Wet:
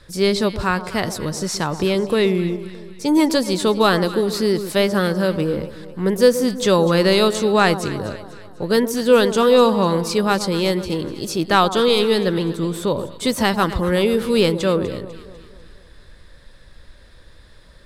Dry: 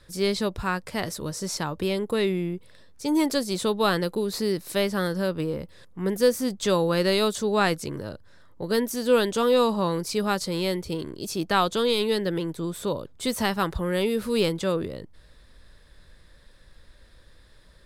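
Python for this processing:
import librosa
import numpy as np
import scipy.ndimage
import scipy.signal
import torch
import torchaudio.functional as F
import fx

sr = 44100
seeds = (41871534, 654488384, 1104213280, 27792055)

p1 = fx.high_shelf(x, sr, hz=10000.0, db=-6.0)
p2 = p1 + fx.echo_alternate(p1, sr, ms=124, hz=1100.0, feedback_pct=68, wet_db=-11.5, dry=0)
y = F.gain(torch.from_numpy(p2), 7.0).numpy()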